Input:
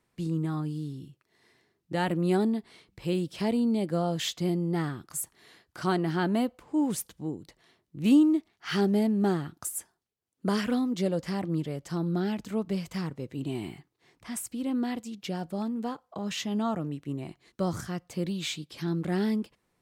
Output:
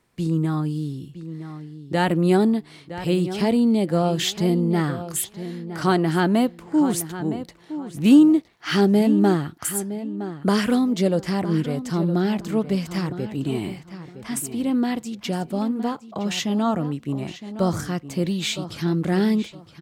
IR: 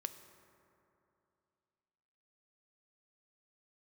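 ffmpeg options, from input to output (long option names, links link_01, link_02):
-filter_complex "[0:a]asplit=2[link_01][link_02];[link_02]adelay=964,lowpass=frequency=3700:poles=1,volume=-12dB,asplit=2[link_03][link_04];[link_04]adelay=964,lowpass=frequency=3700:poles=1,volume=0.24,asplit=2[link_05][link_06];[link_06]adelay=964,lowpass=frequency=3700:poles=1,volume=0.24[link_07];[link_01][link_03][link_05][link_07]amix=inputs=4:normalize=0,volume=7.5dB"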